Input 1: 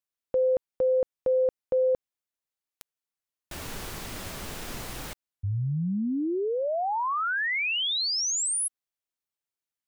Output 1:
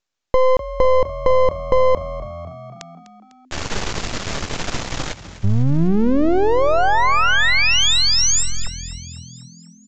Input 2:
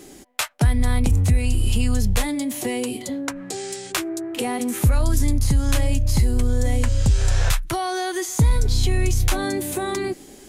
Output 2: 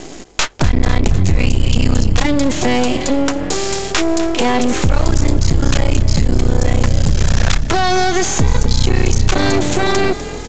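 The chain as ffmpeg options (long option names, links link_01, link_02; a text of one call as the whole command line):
ffmpeg -i in.wav -filter_complex "[0:a]acompressor=threshold=-29dB:ratio=3:attack=29:release=21:knee=1:detection=peak,aeval=exprs='max(val(0),0)':channel_layout=same,asplit=2[link_01][link_02];[link_02]asplit=6[link_03][link_04][link_05][link_06][link_07][link_08];[link_03]adelay=250,afreqshift=42,volume=-15dB[link_09];[link_04]adelay=500,afreqshift=84,volume=-19.3dB[link_10];[link_05]adelay=750,afreqshift=126,volume=-23.6dB[link_11];[link_06]adelay=1000,afreqshift=168,volume=-27.9dB[link_12];[link_07]adelay=1250,afreqshift=210,volume=-32.2dB[link_13];[link_08]adelay=1500,afreqshift=252,volume=-36.5dB[link_14];[link_09][link_10][link_11][link_12][link_13][link_14]amix=inputs=6:normalize=0[link_15];[link_01][link_15]amix=inputs=2:normalize=0,aresample=16000,aresample=44100,apsyclip=20.5dB,volume=-4dB" out.wav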